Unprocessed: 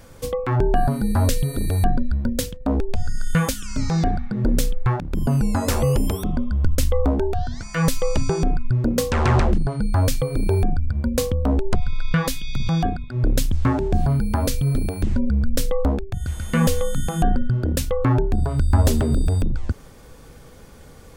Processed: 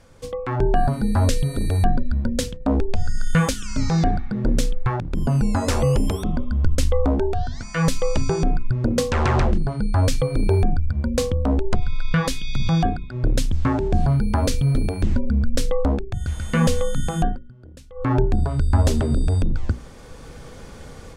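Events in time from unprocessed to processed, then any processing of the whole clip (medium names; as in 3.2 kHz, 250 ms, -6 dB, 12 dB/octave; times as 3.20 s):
17.19–18.15 s: dip -23 dB, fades 0.21 s
whole clip: level rider; low-pass 8.6 kHz 12 dB/octave; hum notches 60/120/180/240/300/360/420 Hz; trim -5.5 dB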